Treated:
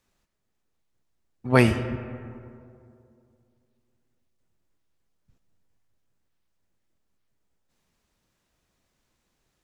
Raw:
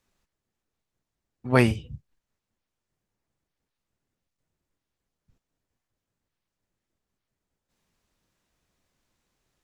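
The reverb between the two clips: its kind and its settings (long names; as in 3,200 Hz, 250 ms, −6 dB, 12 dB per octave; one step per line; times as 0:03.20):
comb and all-pass reverb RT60 2.5 s, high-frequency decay 0.4×, pre-delay 30 ms, DRR 11 dB
level +1.5 dB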